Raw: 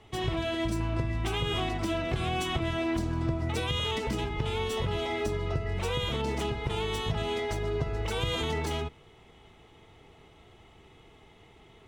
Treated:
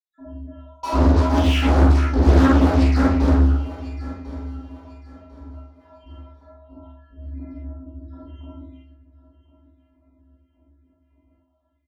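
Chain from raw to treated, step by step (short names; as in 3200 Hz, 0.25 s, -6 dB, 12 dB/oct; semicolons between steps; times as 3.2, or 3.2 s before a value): random spectral dropouts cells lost 83%; LPF 1500 Hz 12 dB/oct; limiter -26.5 dBFS, peak gain reduction 8.5 dB; robotiser 359 Hz; frequency shift -90 Hz; 0.83–3.29 fuzz box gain 53 dB, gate -57 dBFS; doubler 46 ms -3.5 dB; feedback echo 1.048 s, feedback 28%, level -16.5 dB; reverb RT60 0.60 s, pre-delay 3 ms, DRR -11.5 dB; Doppler distortion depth 0.6 ms; gain -17.5 dB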